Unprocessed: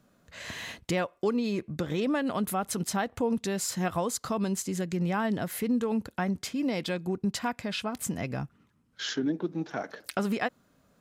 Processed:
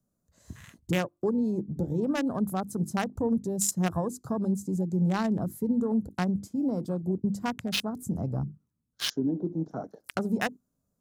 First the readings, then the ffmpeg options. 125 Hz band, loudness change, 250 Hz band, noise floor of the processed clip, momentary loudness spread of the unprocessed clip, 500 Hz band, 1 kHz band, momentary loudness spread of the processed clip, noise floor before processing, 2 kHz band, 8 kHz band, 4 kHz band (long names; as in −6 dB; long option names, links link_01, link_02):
+4.0 dB, +1.0 dB, +2.0 dB, −80 dBFS, 8 LU, −1.0 dB, −2.5 dB, 7 LU, −67 dBFS, −2.5 dB, 0.0 dB, +0.5 dB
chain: -filter_complex "[0:a]bandreject=frequency=50:width_type=h:width=6,bandreject=frequency=100:width_type=h:width=6,bandreject=frequency=150:width_type=h:width=6,bandreject=frequency=200:width_type=h:width=6,bandreject=frequency=250:width_type=h:width=6,bandreject=frequency=300:width_type=h:width=6,bandreject=frequency=350:width_type=h:width=6,afwtdn=0.0158,equalizer=frequency=660:width=0.36:gain=-10,acrossover=split=160|1200|5400[link_01][link_02][link_03][link_04];[link_03]acrusher=bits=5:mix=0:aa=0.5[link_05];[link_01][link_02][link_05][link_04]amix=inputs=4:normalize=0,volume=8.5dB"